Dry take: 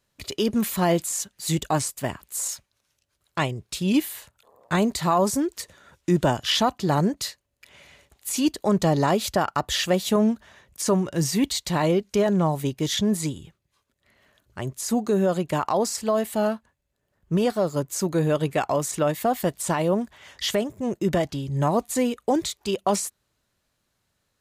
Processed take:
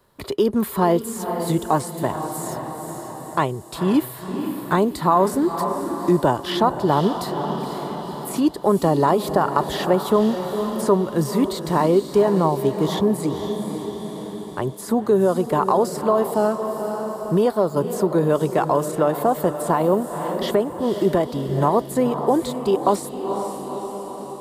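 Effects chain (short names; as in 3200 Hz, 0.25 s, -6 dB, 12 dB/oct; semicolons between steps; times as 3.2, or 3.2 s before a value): fifteen-band EQ 400 Hz +7 dB, 1000 Hz +8 dB, 2500 Hz -8 dB, 6300 Hz -11 dB; diffused feedback echo 0.494 s, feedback 51%, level -10 dB; three-band squash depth 40%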